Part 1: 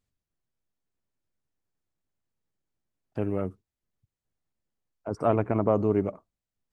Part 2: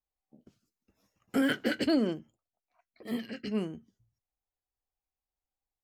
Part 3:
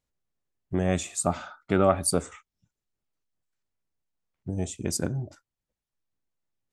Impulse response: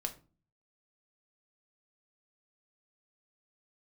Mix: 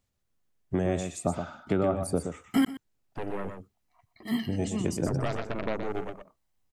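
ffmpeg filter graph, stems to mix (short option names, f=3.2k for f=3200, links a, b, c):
-filter_complex "[0:a]aeval=exprs='0.376*(cos(1*acos(clip(val(0)/0.376,-1,1)))-cos(1*PI/2))+0.0944*(cos(6*acos(clip(val(0)/0.376,-1,1)))-cos(6*PI/2))':c=same,acrossover=split=1500|3100[a][b][c];[a]acompressor=threshold=-32dB:ratio=4[d];[b]acompressor=threshold=-47dB:ratio=4[e];[c]acompressor=threshold=-51dB:ratio=4[f];[d][e][f]amix=inputs=3:normalize=0,volume=1.5dB,asplit=2[g][h];[h]volume=-7dB[i];[1:a]aecho=1:1:1:0.9,adelay=1200,volume=2.5dB,asplit=3[j][k][l];[j]atrim=end=2.65,asetpts=PTS-STARTPTS,afade=t=out:st=2.646:d=0.004:c=hsin[m];[k]atrim=start=2.65:end=3.46,asetpts=PTS-STARTPTS,volume=0[n];[l]atrim=start=3.46,asetpts=PTS-STARTPTS,afade=t=in:d=0.004:c=hsin[o];[m][n][o]concat=n=3:v=0:a=1,asplit=2[p][q];[q]volume=-16.5dB[r];[2:a]acrossover=split=150|780[s][t][u];[s]acompressor=threshold=-37dB:ratio=4[v];[t]acompressor=threshold=-26dB:ratio=4[w];[u]acompressor=threshold=-43dB:ratio=4[x];[v][w][x]amix=inputs=3:normalize=0,volume=2dB,asplit=3[y][z][aa];[z]volume=-7dB[ab];[aa]apad=whole_len=310292[ac];[p][ac]sidechaincompress=threshold=-37dB:ratio=4:attack=16:release=324[ad];[i][r][ab]amix=inputs=3:normalize=0,aecho=0:1:122:1[ae];[g][ad][y][ae]amix=inputs=4:normalize=0"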